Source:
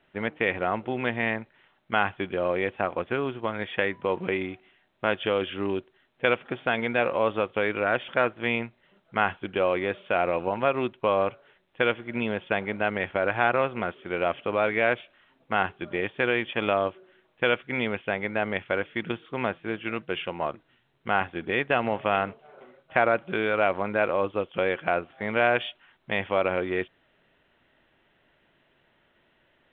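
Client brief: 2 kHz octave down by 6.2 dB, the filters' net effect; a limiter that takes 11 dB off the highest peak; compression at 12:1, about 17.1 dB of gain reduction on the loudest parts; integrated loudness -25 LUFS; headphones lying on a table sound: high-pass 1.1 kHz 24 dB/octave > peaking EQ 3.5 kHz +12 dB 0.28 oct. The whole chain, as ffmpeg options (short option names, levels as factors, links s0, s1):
-af "equalizer=f=2000:t=o:g=-9,acompressor=threshold=0.0141:ratio=12,alimiter=level_in=2.24:limit=0.0631:level=0:latency=1,volume=0.447,highpass=f=1100:w=0.5412,highpass=f=1100:w=1.3066,equalizer=f=3500:t=o:w=0.28:g=12,volume=18.8"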